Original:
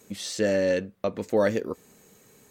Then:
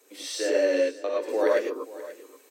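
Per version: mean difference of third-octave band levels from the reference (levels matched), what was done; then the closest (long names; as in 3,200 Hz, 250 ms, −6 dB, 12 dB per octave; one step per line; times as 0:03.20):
8.0 dB: Butterworth high-pass 280 Hz 72 dB per octave
notch filter 6,800 Hz, Q 10
on a send: single-tap delay 532 ms −17 dB
on the sum: reverb whose tail is shaped and stops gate 130 ms rising, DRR −3.5 dB
level −4 dB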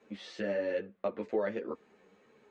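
6.0 dB: low-pass filter 5,800 Hz 12 dB per octave
three-way crossover with the lows and the highs turned down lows −14 dB, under 230 Hz, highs −20 dB, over 3,200 Hz
downward compressor, threshold −25 dBFS, peak gain reduction 7 dB
string-ensemble chorus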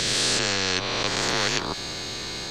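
16.5 dB: peak hold with a rise ahead of every peak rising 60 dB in 1.10 s
frequency shifter −80 Hz
low-pass with resonance 4,300 Hz, resonance Q 9.9
every bin compressed towards the loudest bin 4 to 1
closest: second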